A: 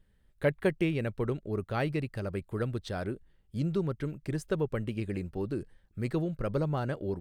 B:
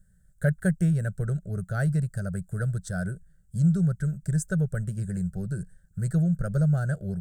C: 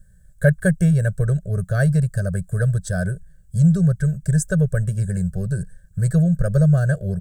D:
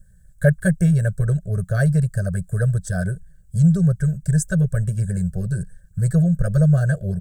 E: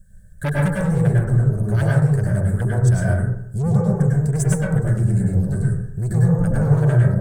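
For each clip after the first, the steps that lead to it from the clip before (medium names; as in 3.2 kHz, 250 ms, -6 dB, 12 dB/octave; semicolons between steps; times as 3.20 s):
FFT filter 100 Hz 0 dB, 180 Hz +7 dB, 260 Hz -21 dB, 670 Hz -5 dB, 1 kHz -28 dB, 1.5 kHz +3 dB, 2.4 kHz -26 dB, 4.9 kHz -7 dB, 7.9 kHz +12 dB, 11 kHz +2 dB; trim +5.5 dB
comb 1.8 ms, depth 88%; trim +5.5 dB
LFO notch sine 8.8 Hz 410–4200 Hz
small resonant body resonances 230/3600 Hz, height 7 dB; saturation -18.5 dBFS, distortion -9 dB; plate-style reverb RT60 0.71 s, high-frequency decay 0.3×, pre-delay 90 ms, DRR -4 dB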